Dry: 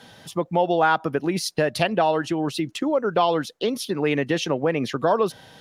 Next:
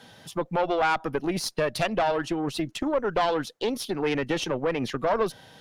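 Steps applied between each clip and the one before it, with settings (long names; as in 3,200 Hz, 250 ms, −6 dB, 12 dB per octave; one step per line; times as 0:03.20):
tube saturation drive 16 dB, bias 0.6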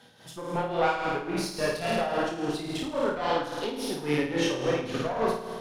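multi-voice chorus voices 2, 0.56 Hz, delay 26 ms, depth 3.9 ms
flutter between parallel walls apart 9.2 metres, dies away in 1.4 s
amplitude tremolo 3.6 Hz, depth 61%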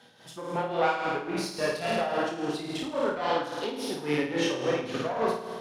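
high-pass filter 160 Hz 6 dB per octave
high-shelf EQ 11,000 Hz −6.5 dB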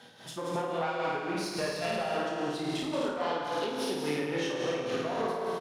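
downward compressor 3 to 1, threshold −35 dBFS, peak gain reduction 11.5 dB
loudspeakers that aren't time-aligned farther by 62 metres −7 dB, 88 metres −7 dB
level +3 dB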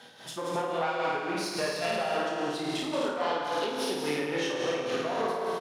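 low-shelf EQ 230 Hz −7.5 dB
level +3 dB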